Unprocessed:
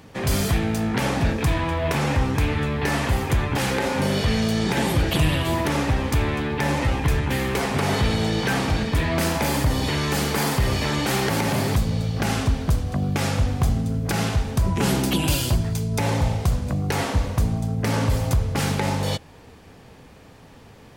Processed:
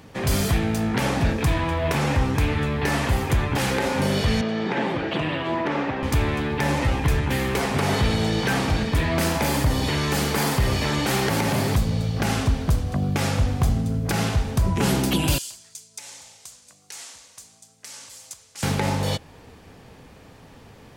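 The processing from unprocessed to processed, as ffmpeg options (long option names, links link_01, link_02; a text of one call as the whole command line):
ffmpeg -i in.wav -filter_complex "[0:a]asettb=1/sr,asplit=3[link_01][link_02][link_03];[link_01]atrim=end=4.414[link_04];[link_02]atrim=start=4.41:end=6.03,asetpts=PTS-STARTPTS,afade=type=in:duration=0.004:curve=qsin,afade=type=out:start_time=1.616:duration=0.004:curve=qsin,highpass=220,lowpass=2600[link_05];[link_03]atrim=start=6.026[link_06];[link_04][link_05]acrossfade=duration=0.004:curve1=hsin:curve2=qsin[link_07];[link_07][link_06]acrossfade=duration=0.004:curve1=qsin:curve2=hsin,asettb=1/sr,asplit=3[link_08][link_09][link_10];[link_08]atrim=end=15.384[link_11];[link_09]atrim=start=15.38:end=18.63,asetpts=PTS-STARTPTS,afade=type=in:duration=0.004:curve=qsin,afade=type=out:start_time=3.246:duration=0.004:curve=qsin,bandpass=frequency=7400:width_type=q:width=1.7[link_12];[link_10]atrim=start=18.626[link_13];[link_11][link_12]acrossfade=duration=0.004:curve1=hsin:curve2=qsin[link_14];[link_14][link_13]acrossfade=duration=0.004:curve1=qsin:curve2=hsin" out.wav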